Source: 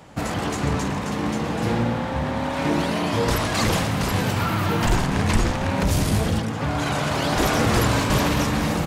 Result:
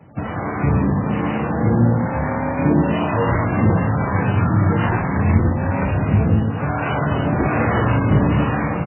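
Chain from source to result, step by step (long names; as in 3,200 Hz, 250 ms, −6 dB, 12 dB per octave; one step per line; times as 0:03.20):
high-pass filter 76 Hz 24 dB per octave
low-shelf EQ 190 Hz +8 dB
automatic gain control gain up to 6 dB
two-band tremolo in antiphase 1.1 Hz, depth 50%, crossover 490 Hz
single-tap delay 112 ms −15 dB
MP3 8 kbit/s 8,000 Hz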